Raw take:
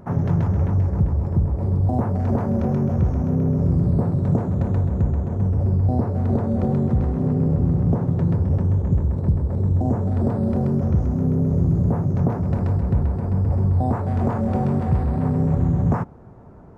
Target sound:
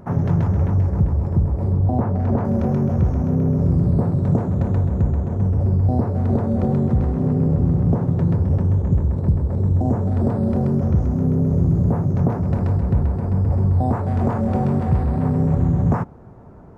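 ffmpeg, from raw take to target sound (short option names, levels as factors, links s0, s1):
-filter_complex "[0:a]asettb=1/sr,asplit=3[s0][s1][s2];[s0]atrim=end=1.724[s3];[s1]atrim=start=1.72:end=2.45,asetpts=PTS-STARTPTS,afade=t=in:d=0.004:c=qsin,afade=t=out:st=0.726:d=0.004:c=qsin,aemphasis=mode=reproduction:type=50kf[s4];[s2]atrim=start=2.446[s5];[s3][s4]acrossfade=d=0.004:c1=hsin:c2=qsin[s6];[s6][s5]acrossfade=d=0.004:c1=qsin:c2=hsin,volume=1.19"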